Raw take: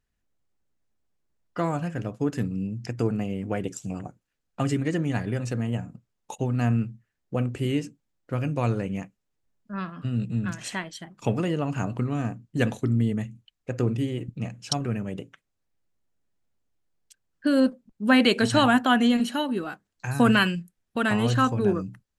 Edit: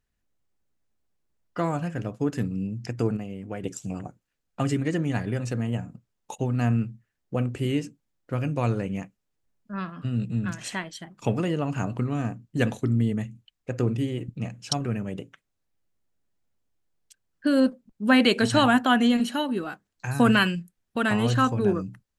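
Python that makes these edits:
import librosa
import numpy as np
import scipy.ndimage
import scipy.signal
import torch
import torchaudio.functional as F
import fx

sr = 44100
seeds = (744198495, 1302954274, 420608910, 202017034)

y = fx.edit(x, sr, fx.clip_gain(start_s=3.17, length_s=0.46, db=-6.0), tone=tone)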